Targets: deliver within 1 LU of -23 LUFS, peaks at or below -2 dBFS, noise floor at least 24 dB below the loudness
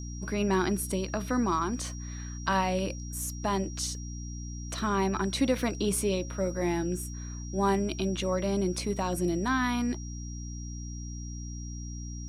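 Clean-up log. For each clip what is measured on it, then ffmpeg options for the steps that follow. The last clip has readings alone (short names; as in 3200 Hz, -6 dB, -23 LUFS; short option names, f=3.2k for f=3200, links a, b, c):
hum 60 Hz; harmonics up to 300 Hz; hum level -36 dBFS; steady tone 5700 Hz; tone level -46 dBFS; loudness -31.0 LUFS; peak -13.5 dBFS; loudness target -23.0 LUFS
-> -af "bandreject=f=60:t=h:w=6,bandreject=f=120:t=h:w=6,bandreject=f=180:t=h:w=6,bandreject=f=240:t=h:w=6,bandreject=f=300:t=h:w=6"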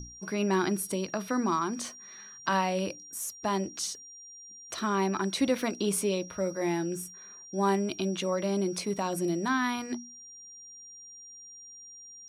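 hum none; steady tone 5700 Hz; tone level -46 dBFS
-> -af "bandreject=f=5.7k:w=30"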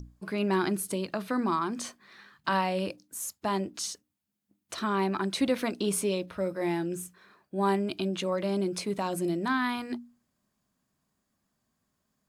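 steady tone none; loudness -30.5 LUFS; peak -15.0 dBFS; loudness target -23.0 LUFS
-> -af "volume=7.5dB"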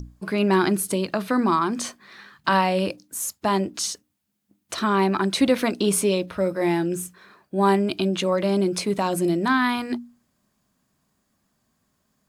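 loudness -23.0 LUFS; peak -7.5 dBFS; noise floor -72 dBFS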